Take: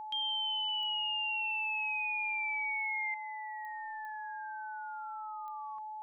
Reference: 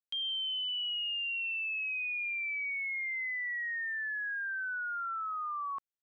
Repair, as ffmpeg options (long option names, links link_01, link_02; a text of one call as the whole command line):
ffmpeg -i in.wav -af "adeclick=threshold=4,bandreject=frequency=860:width=30,asetnsamples=nb_out_samples=441:pad=0,asendcmd='3.14 volume volume 12dB',volume=0dB" out.wav